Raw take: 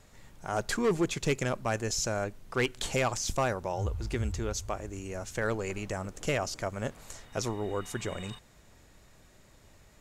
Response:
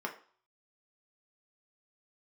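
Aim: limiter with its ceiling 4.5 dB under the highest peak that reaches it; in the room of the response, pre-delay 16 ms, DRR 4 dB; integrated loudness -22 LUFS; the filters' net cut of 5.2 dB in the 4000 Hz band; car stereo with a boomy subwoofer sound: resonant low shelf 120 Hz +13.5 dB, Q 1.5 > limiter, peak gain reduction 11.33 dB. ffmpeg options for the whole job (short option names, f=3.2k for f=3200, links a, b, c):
-filter_complex "[0:a]equalizer=f=4k:t=o:g=-7.5,alimiter=limit=-24dB:level=0:latency=1,asplit=2[a][b];[1:a]atrim=start_sample=2205,adelay=16[c];[b][c]afir=irnorm=-1:irlink=0,volume=-7.5dB[d];[a][d]amix=inputs=2:normalize=0,lowshelf=f=120:t=q:w=1.5:g=13.5,volume=11dB,alimiter=limit=-11.5dB:level=0:latency=1"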